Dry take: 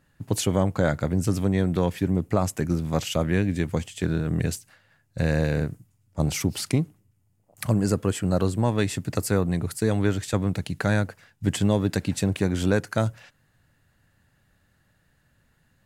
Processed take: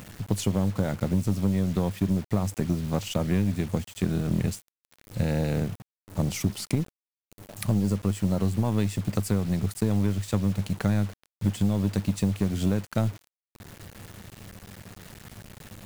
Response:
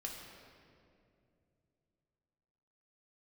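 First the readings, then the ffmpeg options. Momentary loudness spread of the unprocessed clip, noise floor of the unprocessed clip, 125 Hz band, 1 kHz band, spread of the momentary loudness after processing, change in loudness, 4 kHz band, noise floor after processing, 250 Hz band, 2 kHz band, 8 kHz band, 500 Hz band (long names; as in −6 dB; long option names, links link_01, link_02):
6 LU, −67 dBFS, −1.0 dB, −5.5 dB, 19 LU, −2.0 dB, −4.5 dB, below −85 dBFS, −1.0 dB, −8.0 dB, −4.5 dB, −6.0 dB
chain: -af "equalizer=frequency=100:width_type=o:width=0.33:gain=10,equalizer=frequency=200:width_type=o:width=0.33:gain=11,equalizer=frequency=1600:width_type=o:width=0.33:gain=-6,acompressor=threshold=-17dB:ratio=16,aeval=exprs='0.398*(cos(1*acos(clip(val(0)/0.398,-1,1)))-cos(1*PI/2))+0.0112*(cos(7*acos(clip(val(0)/0.398,-1,1)))-cos(7*PI/2))+0.0141*(cos(8*acos(clip(val(0)/0.398,-1,1)))-cos(8*PI/2))':channel_layout=same,acompressor=mode=upward:threshold=-27dB:ratio=2.5,acrusher=bits=6:mix=0:aa=0.000001,volume=-2.5dB"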